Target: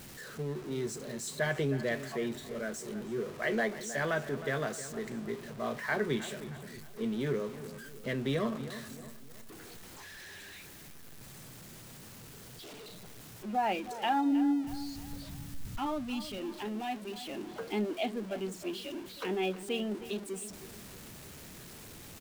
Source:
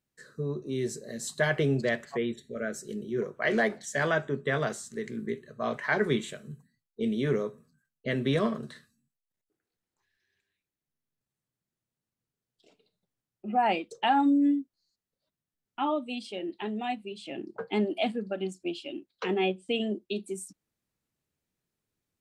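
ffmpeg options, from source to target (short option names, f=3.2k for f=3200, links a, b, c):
-filter_complex "[0:a]aeval=exprs='val(0)+0.5*0.0158*sgn(val(0))':c=same,asplit=3[a][b][c];[a]afade=t=out:st=14.31:d=0.02[d];[b]asubboost=boost=6:cutoff=160,afade=t=in:st=14.31:d=0.02,afade=t=out:st=16.37:d=0.02[e];[c]afade=t=in:st=16.37:d=0.02[f];[d][e][f]amix=inputs=3:normalize=0,asplit=2[g][h];[h]adelay=314,lowpass=f=3.4k:p=1,volume=-13.5dB,asplit=2[i][j];[j]adelay=314,lowpass=f=3.4k:p=1,volume=0.45,asplit=2[k][l];[l]adelay=314,lowpass=f=3.4k:p=1,volume=0.45,asplit=2[m][n];[n]adelay=314,lowpass=f=3.4k:p=1,volume=0.45[o];[g][i][k][m][o]amix=inputs=5:normalize=0,volume=-6dB"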